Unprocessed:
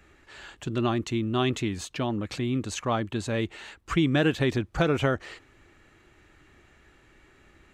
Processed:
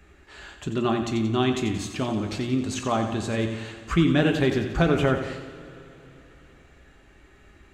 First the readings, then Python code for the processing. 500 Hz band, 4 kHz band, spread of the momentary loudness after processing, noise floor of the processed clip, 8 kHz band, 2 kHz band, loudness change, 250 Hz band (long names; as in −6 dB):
+3.0 dB, +1.5 dB, 14 LU, −54 dBFS, +1.5 dB, +1.5 dB, +3.0 dB, +3.5 dB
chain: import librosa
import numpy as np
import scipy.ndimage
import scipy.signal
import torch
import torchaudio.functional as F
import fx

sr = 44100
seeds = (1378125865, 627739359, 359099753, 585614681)

p1 = fx.low_shelf(x, sr, hz=260.0, db=4.0)
p2 = p1 + fx.echo_feedback(p1, sr, ms=89, feedback_pct=53, wet_db=-9.0, dry=0)
y = fx.rev_double_slope(p2, sr, seeds[0], early_s=0.26, late_s=3.7, knee_db=-19, drr_db=5.5)